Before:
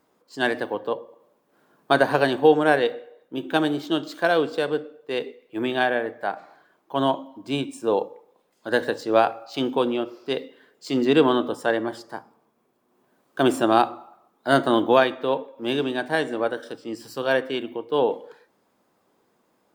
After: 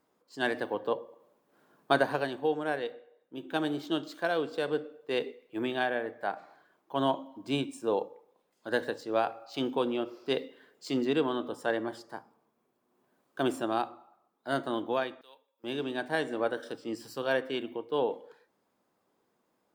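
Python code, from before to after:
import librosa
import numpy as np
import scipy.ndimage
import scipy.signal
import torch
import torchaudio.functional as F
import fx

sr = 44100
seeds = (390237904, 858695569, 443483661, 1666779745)

y = fx.differentiator(x, sr, at=(15.21, 15.64))
y = fx.rider(y, sr, range_db=5, speed_s=0.5)
y = y * librosa.db_to_amplitude(-8.5)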